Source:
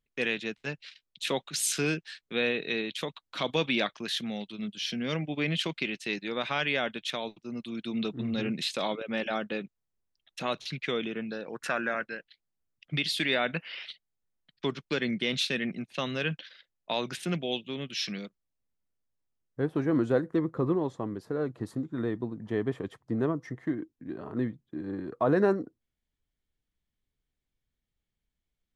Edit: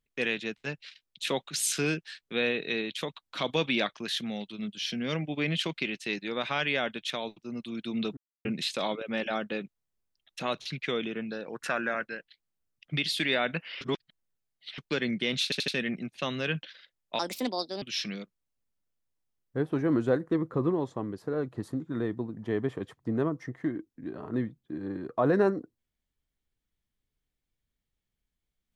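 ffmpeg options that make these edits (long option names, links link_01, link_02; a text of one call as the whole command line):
ffmpeg -i in.wav -filter_complex "[0:a]asplit=10[link_01][link_02][link_03][link_04][link_05][link_06][link_07][link_08][link_09][link_10];[link_01]atrim=end=8.17,asetpts=PTS-STARTPTS,afade=type=out:start_time=8.166:duration=0.004:curve=hsin[link_11];[link_02]atrim=start=8.17:end=8.45,asetpts=PTS-STARTPTS,volume=0[link_12];[link_03]atrim=start=8.45:end=13.812,asetpts=PTS-STARTPTS,afade=type=in:duration=0.004:curve=hsin[link_13];[link_04]atrim=start=13.808:end=14.782,asetpts=PTS-STARTPTS,areverse[link_14];[link_05]atrim=start=14.778:end=15.522[link_15];[link_06]atrim=start=15.438:end=15.522[link_16];[link_07]atrim=start=15.438:end=15.522[link_17];[link_08]atrim=start=15.438:end=16.954[link_18];[link_09]atrim=start=16.95:end=17.85,asetpts=PTS-STARTPTS,asetrate=63063,aresample=44100,atrim=end_sample=27755,asetpts=PTS-STARTPTS[link_19];[link_10]atrim=start=17.846[link_20];[link_11][link_12][link_13]concat=n=3:v=0:a=1[link_21];[link_21][link_14]acrossfade=duration=0.004:curve1=hsin:curve2=hsin[link_22];[link_22][link_15]acrossfade=duration=0.004:curve1=hsin:curve2=hsin[link_23];[link_23][link_16]acrossfade=duration=0.004:curve1=hsin:curve2=hsin[link_24];[link_24][link_17]acrossfade=duration=0.004:curve1=hsin:curve2=hsin[link_25];[link_25][link_18]acrossfade=duration=0.004:curve1=hsin:curve2=hsin[link_26];[link_26][link_19]acrossfade=duration=0.004:curve1=hsin:curve2=hsin[link_27];[link_27][link_20]acrossfade=duration=0.004:curve1=hsin:curve2=hsin" out.wav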